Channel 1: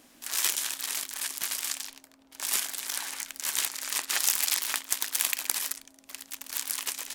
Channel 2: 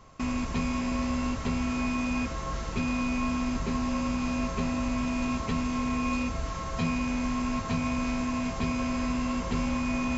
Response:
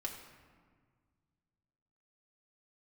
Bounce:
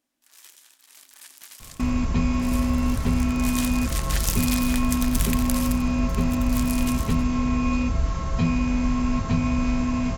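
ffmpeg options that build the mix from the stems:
-filter_complex "[0:a]volume=-4.5dB,afade=t=in:st=0.86:d=0.28:silence=0.334965,afade=t=in:st=2.82:d=0.74:silence=0.316228,asplit=3[a][b][c];[b]volume=-11dB[d];[c]volume=-10.5dB[e];[1:a]lowshelf=f=220:g=10.5,adelay=1600,volume=1dB[f];[2:a]atrim=start_sample=2205[g];[d][g]afir=irnorm=-1:irlink=0[h];[e]aecho=0:1:90:1[i];[a][f][h][i]amix=inputs=4:normalize=0"

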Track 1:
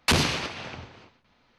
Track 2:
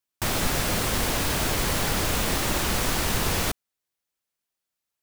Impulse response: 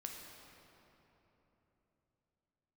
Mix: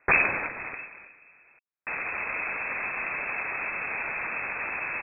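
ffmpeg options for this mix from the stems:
-filter_complex "[0:a]volume=1.5dB,asplit=2[a][b];[b]volume=-13dB[c];[1:a]dynaudnorm=f=140:g=3:m=11.5dB,alimiter=limit=-12dB:level=0:latency=1,adelay=1650,volume=-7.5dB[d];[2:a]atrim=start_sample=2205[e];[c][e]afir=irnorm=-1:irlink=0[f];[a][d][f]amix=inputs=3:normalize=0,highpass=77,lowpass=f=2.3k:t=q:w=0.5098,lowpass=f=2.3k:t=q:w=0.6013,lowpass=f=2.3k:t=q:w=0.9,lowpass=f=2.3k:t=q:w=2.563,afreqshift=-2700"

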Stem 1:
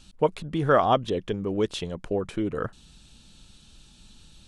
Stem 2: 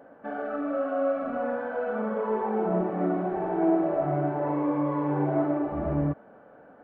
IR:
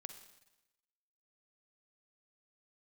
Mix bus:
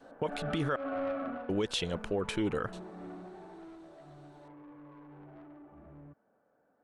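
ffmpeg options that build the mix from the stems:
-filter_complex "[0:a]agate=range=-23dB:threshold=-40dB:ratio=16:detection=peak,crystalizer=i=0.5:c=0,equalizer=f=2.6k:w=0.42:g=7,volume=-1.5dB,asplit=3[a][b][c];[a]atrim=end=0.76,asetpts=PTS-STARTPTS,afade=t=out:st=0.756:d=0.004:c=hsin[d];[b]atrim=start=0.76:end=1.49,asetpts=PTS-STARTPTS,volume=0[e];[c]atrim=start=1.49,asetpts=PTS-STARTPTS,afade=t=in:d=0.004:c=hsin[f];[d][e][f]concat=n=3:v=0:a=1[g];[1:a]adynamicequalizer=threshold=0.0112:dfrequency=580:dqfactor=1.7:tfrequency=580:tqfactor=1.7:attack=5:release=100:ratio=0.375:range=2.5:mode=cutabove:tftype=bell,asoftclip=type=tanh:threshold=-27.5dB,volume=-1.5dB,afade=t=out:st=1.25:d=0.23:silence=0.266073,afade=t=out:st=3.14:d=0.62:silence=0.421697[h];[g][h]amix=inputs=2:normalize=0,alimiter=limit=-22.5dB:level=0:latency=1:release=122"

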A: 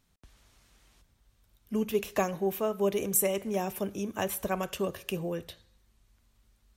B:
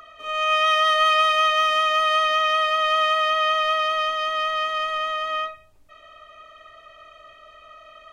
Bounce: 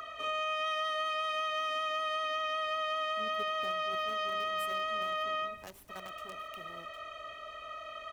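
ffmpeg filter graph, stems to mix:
-filter_complex "[0:a]bandreject=f=50:t=h:w=6,bandreject=f=100:t=h:w=6,bandreject=f=150:t=h:w=6,bandreject=f=200:t=h:w=6,bandreject=f=250:t=h:w=6,bandreject=f=300:t=h:w=6,bandreject=f=350:t=h:w=6,bandreject=f=400:t=h:w=6,acrusher=bits=5:dc=4:mix=0:aa=0.000001,adelay=1450,volume=-17dB[a];[1:a]acompressor=threshold=-25dB:ratio=4,volume=2dB[b];[a][b]amix=inputs=2:normalize=0,acrossover=split=440[c][d];[d]acompressor=threshold=-35dB:ratio=3[e];[c][e]amix=inputs=2:normalize=0,highpass=f=60:p=1"

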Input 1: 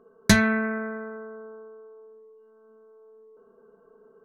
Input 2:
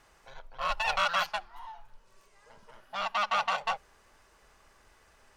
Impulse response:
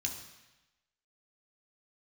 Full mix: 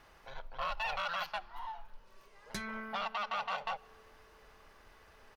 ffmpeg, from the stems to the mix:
-filter_complex "[0:a]equalizer=f=200:t=o:w=0.77:g=-8.5,aecho=1:1:5.4:0.65,adelay=2250,volume=-16dB[a];[1:a]alimiter=limit=-22.5dB:level=0:latency=1:release=18,equalizer=f=7.7k:t=o:w=0.85:g=-11.5,bandreject=f=60:t=h:w=6,bandreject=f=120:t=h:w=6,volume=2dB,asplit=2[b][c];[c]volume=-21.5dB[d];[2:a]atrim=start_sample=2205[e];[d][e]afir=irnorm=-1:irlink=0[f];[a][b][f]amix=inputs=3:normalize=0,alimiter=level_in=3dB:limit=-24dB:level=0:latency=1:release=222,volume=-3dB"

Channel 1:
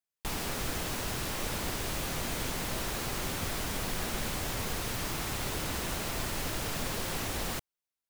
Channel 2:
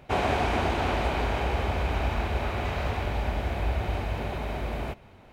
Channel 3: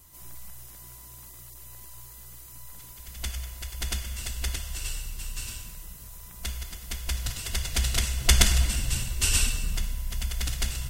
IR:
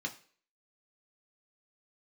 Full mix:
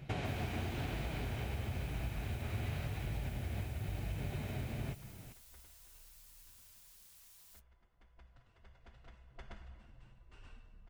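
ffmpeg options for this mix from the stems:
-filter_complex "[0:a]aderivative,volume=-18.5dB[a];[1:a]equalizer=f=125:t=o:w=1:g=9,equalizer=f=500:t=o:w=1:g=-4,equalizer=f=1k:t=o:w=1:g=-9,acompressor=threshold=-33dB:ratio=12,volume=2.5dB[b];[2:a]lowpass=1k,lowshelf=f=430:g=-11,adelay=1100,volume=-14.5dB[c];[a][b][c]amix=inputs=3:normalize=0,flanger=delay=6:depth=3.6:regen=-48:speed=0.98:shape=sinusoidal"

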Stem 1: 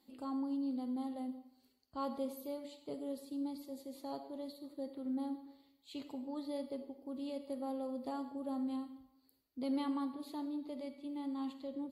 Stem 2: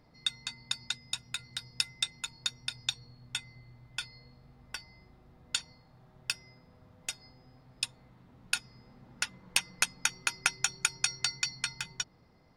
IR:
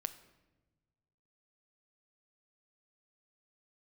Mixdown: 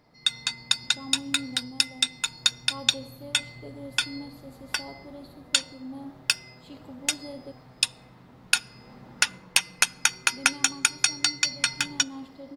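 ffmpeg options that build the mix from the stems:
-filter_complex "[0:a]adelay=750,volume=-8.5dB,asplit=3[a][b][c];[a]atrim=end=7.52,asetpts=PTS-STARTPTS,afade=t=out:st=7.516:d=0.004:c=hsin[d];[b]atrim=start=7.52:end=10.16,asetpts=PTS-STARTPTS,volume=0[e];[c]atrim=start=10.16,asetpts=PTS-STARTPTS,afade=t=in:d=0.004:c=hsin[f];[d][e][f]concat=n=3:v=0:a=1[g];[1:a]lowshelf=f=120:g=-10.5,volume=1dB,asplit=2[h][i];[i]volume=-10.5dB[j];[2:a]atrim=start_sample=2205[k];[j][k]afir=irnorm=-1:irlink=0[l];[g][h][l]amix=inputs=3:normalize=0,dynaudnorm=f=190:g=3:m=9dB"

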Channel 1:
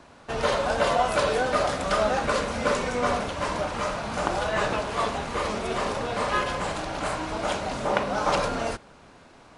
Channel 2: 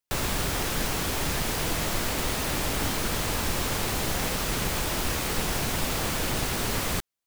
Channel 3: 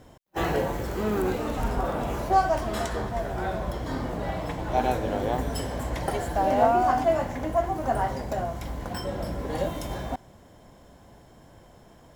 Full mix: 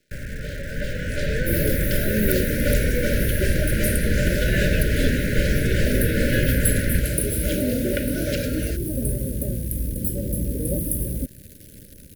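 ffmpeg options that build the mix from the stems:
-filter_complex "[0:a]dynaudnorm=f=840:g=5:m=11.5dB,volume=-14dB[a];[1:a]lowpass=f=1.8k:w=0.5412,lowpass=f=1.8k:w=1.3066,equalizer=f=370:t=o:w=0.92:g=-13,volume=-0.5dB[b];[2:a]firequalizer=gain_entry='entry(120,0);entry(230,-1);entry(1300,-29);entry(6200,-30);entry(9400,14)':delay=0.05:min_phase=1,adelay=1100,volume=-1.5dB[c];[a][b][c]amix=inputs=3:normalize=0,dynaudnorm=f=220:g=9:m=10dB,acrusher=bits=8:dc=4:mix=0:aa=0.000001,asuperstop=centerf=940:order=20:qfactor=1.1"

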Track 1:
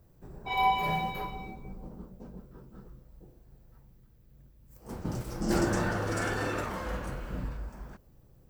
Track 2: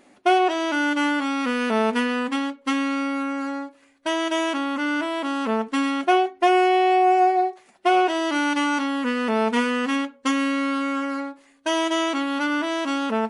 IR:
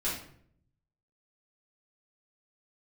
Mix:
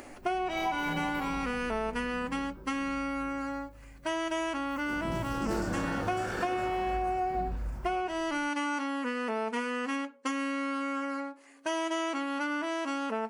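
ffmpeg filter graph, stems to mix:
-filter_complex "[0:a]flanger=delay=18.5:depth=7.2:speed=0.57,volume=-2dB,asplit=2[a][b];[b]volume=-4.5dB[c];[1:a]highpass=260,equalizer=f=3.6k:t=o:w=0.34:g=-9,acompressor=mode=upward:threshold=-31dB:ratio=2.5,volume=-5.5dB[d];[2:a]atrim=start_sample=2205[e];[c][e]afir=irnorm=-1:irlink=0[f];[a][d][f]amix=inputs=3:normalize=0,acompressor=threshold=-28dB:ratio=5"

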